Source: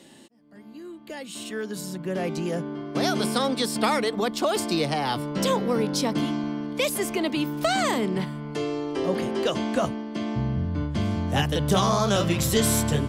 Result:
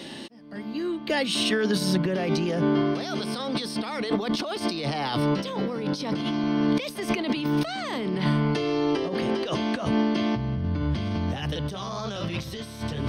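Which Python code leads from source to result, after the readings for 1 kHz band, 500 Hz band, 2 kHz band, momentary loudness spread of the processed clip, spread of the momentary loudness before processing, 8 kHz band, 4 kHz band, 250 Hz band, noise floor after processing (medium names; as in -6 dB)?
-4.0 dB, -2.0 dB, -1.0 dB, 8 LU, 10 LU, -9.5 dB, -1.0 dB, +1.0 dB, -39 dBFS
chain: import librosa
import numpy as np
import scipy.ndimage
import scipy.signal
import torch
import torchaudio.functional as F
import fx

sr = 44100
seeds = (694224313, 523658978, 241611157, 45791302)

y = fx.high_shelf(x, sr, hz=3500.0, db=8.0)
y = fx.over_compress(y, sr, threshold_db=-32.0, ratio=-1.0)
y = scipy.signal.savgol_filter(y, 15, 4, mode='constant')
y = F.gain(torch.from_numpy(y), 5.0).numpy()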